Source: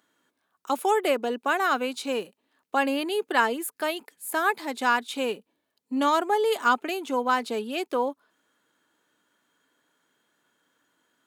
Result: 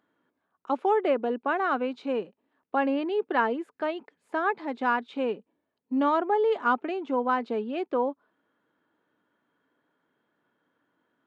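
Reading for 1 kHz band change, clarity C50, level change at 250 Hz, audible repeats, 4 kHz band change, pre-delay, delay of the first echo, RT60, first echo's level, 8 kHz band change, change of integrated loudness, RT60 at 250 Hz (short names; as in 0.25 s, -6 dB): -2.0 dB, none, +1.0 dB, none, -11.0 dB, none, none, none, none, under -25 dB, -1.5 dB, none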